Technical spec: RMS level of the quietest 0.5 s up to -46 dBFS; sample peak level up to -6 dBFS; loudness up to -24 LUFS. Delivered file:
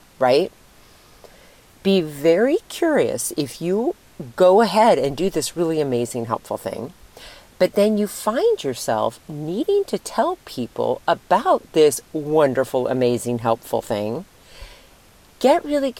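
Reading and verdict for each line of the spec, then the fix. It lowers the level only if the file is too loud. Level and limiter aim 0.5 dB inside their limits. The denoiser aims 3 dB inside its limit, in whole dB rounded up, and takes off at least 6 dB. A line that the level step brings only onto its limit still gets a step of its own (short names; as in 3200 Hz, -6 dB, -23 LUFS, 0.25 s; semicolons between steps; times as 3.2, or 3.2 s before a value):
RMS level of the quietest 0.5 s -50 dBFS: OK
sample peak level -4.5 dBFS: fail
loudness -20.0 LUFS: fail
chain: gain -4.5 dB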